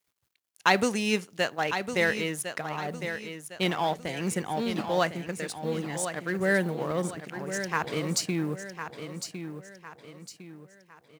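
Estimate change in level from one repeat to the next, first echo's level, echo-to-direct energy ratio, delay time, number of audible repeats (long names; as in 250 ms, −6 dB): −8.0 dB, −9.0 dB, −8.5 dB, 1,056 ms, 4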